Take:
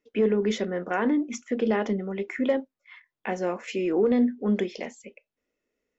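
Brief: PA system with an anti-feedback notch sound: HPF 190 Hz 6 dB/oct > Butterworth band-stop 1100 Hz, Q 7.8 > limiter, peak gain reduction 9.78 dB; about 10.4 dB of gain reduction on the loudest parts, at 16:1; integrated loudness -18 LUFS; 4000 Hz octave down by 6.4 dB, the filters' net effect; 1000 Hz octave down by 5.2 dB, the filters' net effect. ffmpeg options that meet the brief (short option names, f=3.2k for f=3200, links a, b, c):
-af "equalizer=f=1k:t=o:g=-6.5,equalizer=f=4k:t=o:g=-8.5,acompressor=threshold=-29dB:ratio=16,highpass=f=190:p=1,asuperstop=centerf=1100:order=8:qfactor=7.8,volume=21.5dB,alimiter=limit=-9dB:level=0:latency=1"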